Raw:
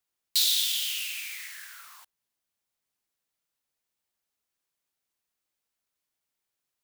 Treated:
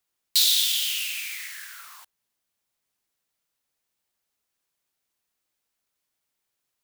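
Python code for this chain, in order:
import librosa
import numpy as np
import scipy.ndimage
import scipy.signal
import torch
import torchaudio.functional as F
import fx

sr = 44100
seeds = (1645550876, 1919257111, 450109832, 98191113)

y = fx.highpass(x, sr, hz=fx.line((0.67, 600.0), (1.76, 860.0)), slope=12, at=(0.67, 1.76), fade=0.02)
y = y * 10.0 ** (4.0 / 20.0)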